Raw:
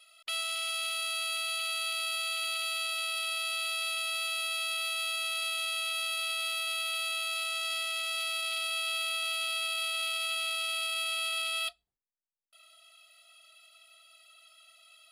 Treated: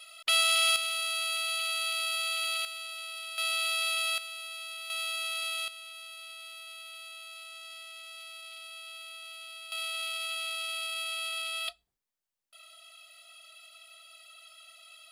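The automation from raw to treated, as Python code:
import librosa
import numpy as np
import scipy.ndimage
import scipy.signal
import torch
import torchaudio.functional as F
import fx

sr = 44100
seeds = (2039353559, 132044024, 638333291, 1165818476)

y = fx.gain(x, sr, db=fx.steps((0.0, 9.0), (0.76, 1.5), (2.65, -7.0), (3.38, 3.0), (4.18, -8.0), (4.9, -1.0), (5.68, -12.5), (9.72, -2.5), (11.68, 5.0)))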